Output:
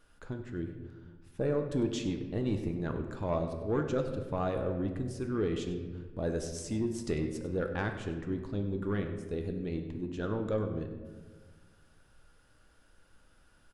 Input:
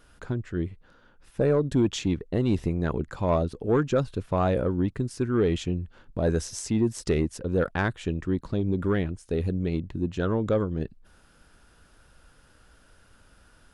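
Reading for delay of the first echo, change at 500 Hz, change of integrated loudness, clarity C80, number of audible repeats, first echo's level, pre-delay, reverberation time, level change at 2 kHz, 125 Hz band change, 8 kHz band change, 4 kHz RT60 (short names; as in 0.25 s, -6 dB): 98 ms, -7.0 dB, -7.5 dB, 8.5 dB, 1, -15.0 dB, 3 ms, 1.5 s, -7.0 dB, -8.0 dB, -8.0 dB, 0.90 s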